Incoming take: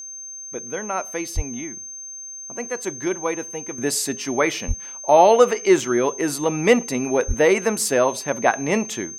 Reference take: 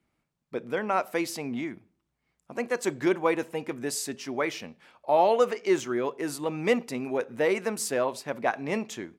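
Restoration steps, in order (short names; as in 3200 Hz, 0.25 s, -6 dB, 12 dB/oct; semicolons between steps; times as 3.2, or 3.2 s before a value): notch 6300 Hz, Q 30; de-plosive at 1.35/4.67/7.27; gain 0 dB, from 3.78 s -8.5 dB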